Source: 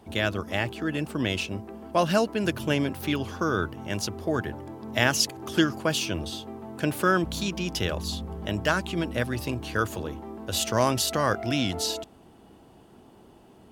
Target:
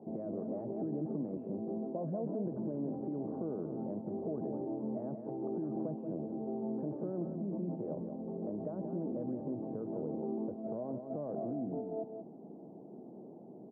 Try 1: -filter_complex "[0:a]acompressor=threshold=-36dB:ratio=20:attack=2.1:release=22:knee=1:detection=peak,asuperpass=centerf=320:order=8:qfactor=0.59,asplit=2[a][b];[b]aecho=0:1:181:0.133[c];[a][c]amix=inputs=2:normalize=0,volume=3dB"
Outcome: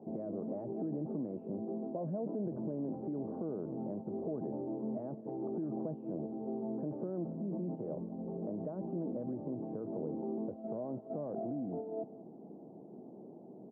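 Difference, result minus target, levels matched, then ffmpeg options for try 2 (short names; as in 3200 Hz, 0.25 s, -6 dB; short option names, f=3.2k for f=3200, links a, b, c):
echo-to-direct -10.5 dB
-filter_complex "[0:a]acompressor=threshold=-36dB:ratio=20:attack=2.1:release=22:knee=1:detection=peak,asuperpass=centerf=320:order=8:qfactor=0.59,asplit=2[a][b];[b]aecho=0:1:181:0.447[c];[a][c]amix=inputs=2:normalize=0,volume=3dB"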